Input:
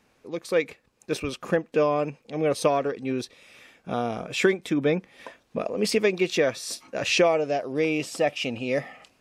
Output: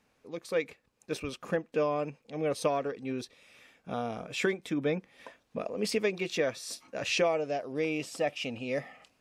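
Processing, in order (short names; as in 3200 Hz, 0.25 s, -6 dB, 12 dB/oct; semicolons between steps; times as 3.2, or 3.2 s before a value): notch 360 Hz, Q 12; gain -6.5 dB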